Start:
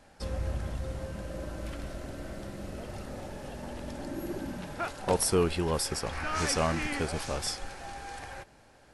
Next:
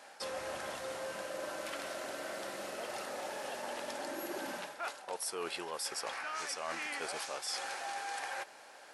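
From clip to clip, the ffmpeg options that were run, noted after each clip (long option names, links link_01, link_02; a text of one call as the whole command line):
ffmpeg -i in.wav -af "highpass=620,areverse,acompressor=threshold=-43dB:ratio=10,areverse,volume=7dB" out.wav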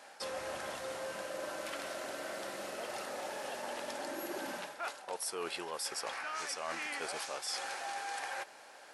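ffmpeg -i in.wav -af anull out.wav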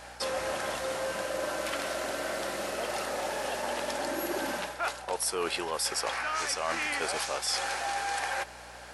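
ffmpeg -i in.wav -af "aeval=exprs='val(0)+0.000708*(sin(2*PI*60*n/s)+sin(2*PI*2*60*n/s)/2+sin(2*PI*3*60*n/s)/3+sin(2*PI*4*60*n/s)/4+sin(2*PI*5*60*n/s)/5)':channel_layout=same,volume=8dB" out.wav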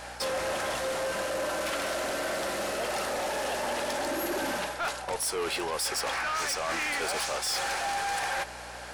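ffmpeg -i in.wav -af "asoftclip=type=tanh:threshold=-31dB,volume=5dB" out.wav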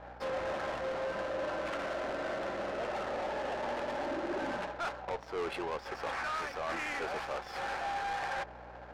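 ffmpeg -i in.wav -af "aresample=16000,aresample=44100,adynamicsmooth=sensitivity=3:basefreq=810,volume=-3.5dB" out.wav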